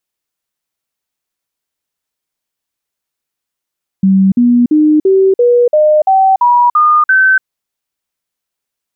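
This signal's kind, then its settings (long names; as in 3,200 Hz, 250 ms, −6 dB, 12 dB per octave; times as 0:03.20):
stepped sweep 192 Hz up, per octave 3, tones 10, 0.29 s, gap 0.05 s −5 dBFS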